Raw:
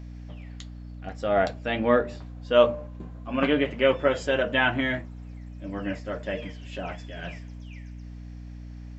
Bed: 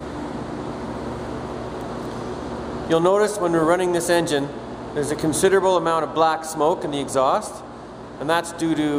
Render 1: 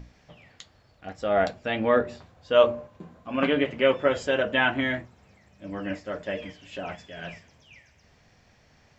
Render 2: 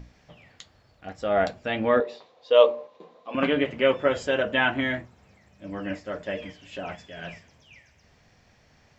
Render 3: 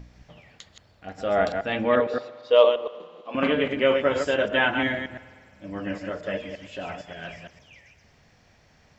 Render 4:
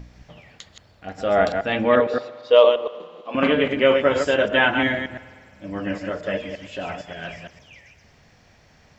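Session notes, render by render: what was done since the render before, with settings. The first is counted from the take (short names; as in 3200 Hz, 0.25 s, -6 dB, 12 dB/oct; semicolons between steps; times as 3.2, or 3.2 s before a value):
notches 60/120/180/240/300/360 Hz
2–3.35 speaker cabinet 430–6200 Hz, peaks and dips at 470 Hz +10 dB, 1000 Hz +3 dB, 1500 Hz -9 dB, 3800 Hz +7 dB
reverse delay 0.115 s, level -5.5 dB; spring tank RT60 2 s, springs 50 ms, chirp 35 ms, DRR 17.5 dB
gain +4 dB; limiter -3 dBFS, peak gain reduction 2.5 dB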